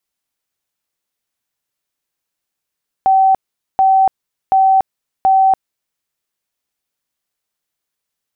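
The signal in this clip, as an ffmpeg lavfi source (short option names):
-f lavfi -i "aevalsrc='0.422*sin(2*PI*768*mod(t,0.73))*lt(mod(t,0.73),221/768)':d=2.92:s=44100"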